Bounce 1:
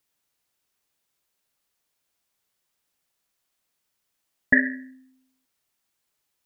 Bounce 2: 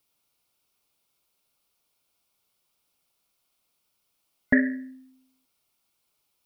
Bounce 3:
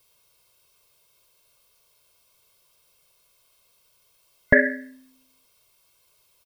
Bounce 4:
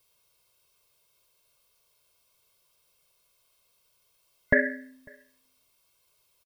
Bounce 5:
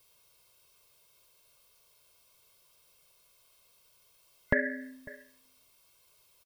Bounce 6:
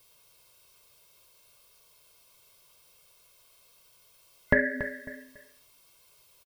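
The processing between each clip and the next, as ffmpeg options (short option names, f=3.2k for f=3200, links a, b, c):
-af "superequalizer=11b=0.355:15b=0.631,volume=3dB"
-filter_complex "[0:a]aecho=1:1:1.9:0.74,asplit=2[a][b];[b]alimiter=limit=-17dB:level=0:latency=1:release=65,volume=-1.5dB[c];[a][c]amix=inputs=2:normalize=0,volume=4dB"
-filter_complex "[0:a]asplit=2[a][b];[b]adelay=548.1,volume=-28dB,highshelf=f=4k:g=-12.3[c];[a][c]amix=inputs=2:normalize=0,volume=-5.5dB"
-af "acompressor=threshold=-32dB:ratio=2.5,volume=4dB"
-af "flanger=delay=5.9:depth=8.4:regen=-73:speed=0.51:shape=sinusoidal,aecho=1:1:283:0.266,volume=8.5dB"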